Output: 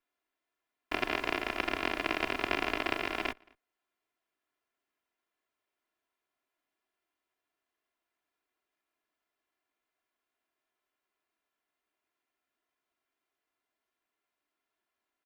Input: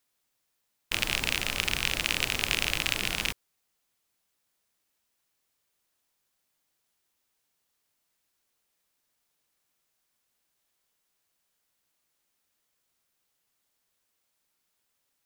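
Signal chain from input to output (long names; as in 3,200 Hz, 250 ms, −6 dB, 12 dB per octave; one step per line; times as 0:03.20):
lower of the sound and its delayed copy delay 2.9 ms
three-way crossover with the lows and the highs turned down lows −12 dB, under 190 Hz, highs −17 dB, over 2,800 Hz
slap from a distant wall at 38 metres, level −28 dB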